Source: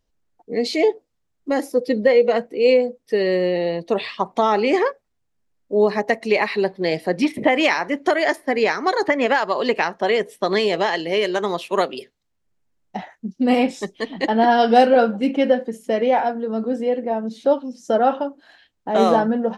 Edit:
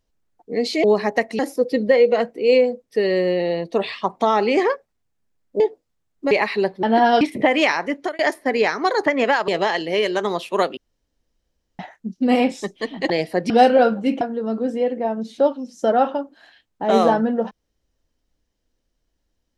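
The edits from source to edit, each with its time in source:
0.84–1.55 swap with 5.76–6.31
6.83–7.23 swap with 14.29–14.67
7.81–8.21 fade out equal-power
9.5–10.67 cut
11.96–12.98 room tone
15.38–16.27 cut

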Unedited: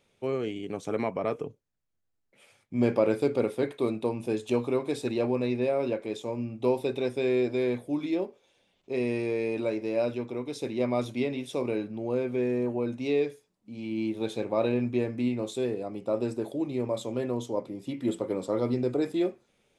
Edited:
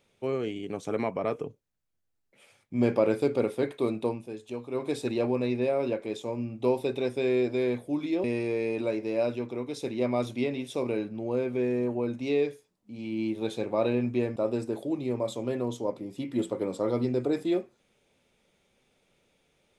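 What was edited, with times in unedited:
4.11–4.83 dip -10 dB, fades 0.13 s
8.24–9.03 cut
15.15–16.05 cut

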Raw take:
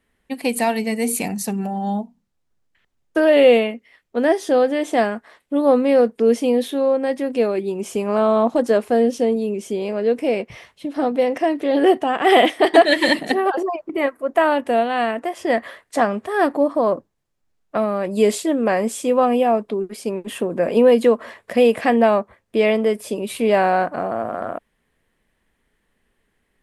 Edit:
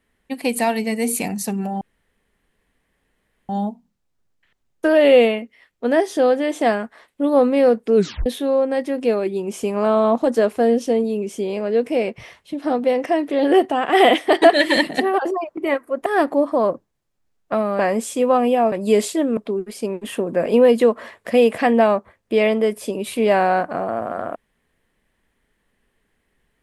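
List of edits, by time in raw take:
1.81 insert room tone 1.68 s
6.28 tape stop 0.30 s
14.38–16.29 cut
18.02–18.67 move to 19.6

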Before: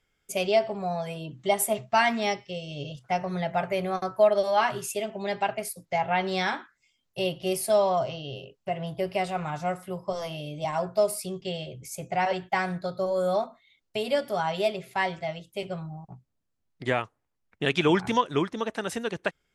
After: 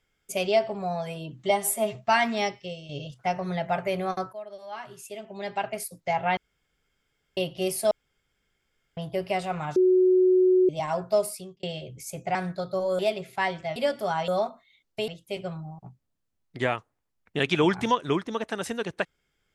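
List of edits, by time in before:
1.5–1.8 stretch 1.5×
2.41–2.74 fade out equal-power, to -9 dB
4.18–5.66 fade in quadratic, from -19.5 dB
6.22–7.22 room tone
7.76–8.82 room tone
9.61–10.54 bleep 369 Hz -16 dBFS
11.07–11.48 fade out
12.2–12.61 cut
13.25–14.05 swap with 14.57–15.34

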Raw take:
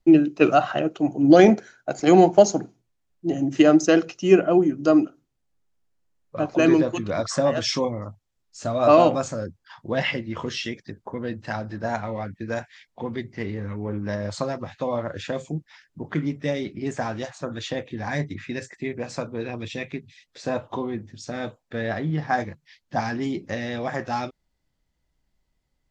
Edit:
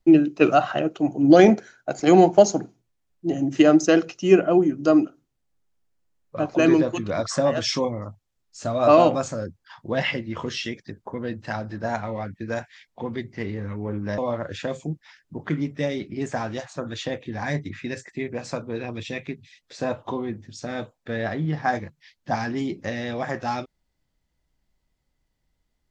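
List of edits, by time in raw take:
14.18–14.83 cut

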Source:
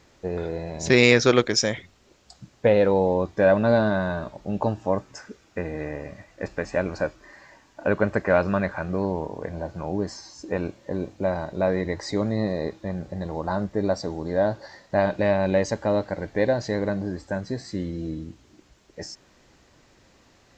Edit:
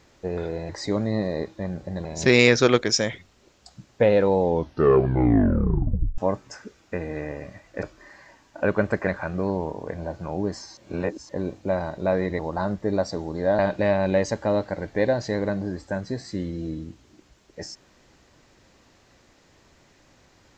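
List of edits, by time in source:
3.04 tape stop 1.78 s
6.47–7.06 cut
8.3–8.62 cut
10.32–10.84 reverse
11.94–13.3 move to 0.69
14.5–14.99 cut

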